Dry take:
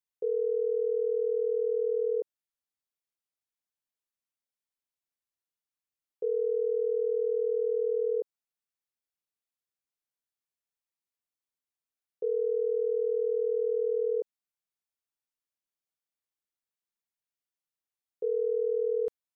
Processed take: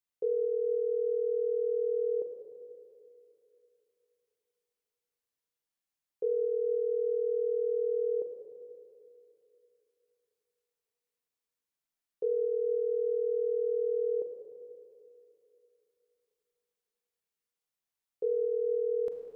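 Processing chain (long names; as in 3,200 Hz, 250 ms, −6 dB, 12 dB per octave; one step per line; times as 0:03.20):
four-comb reverb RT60 2.9 s, combs from 33 ms, DRR 3 dB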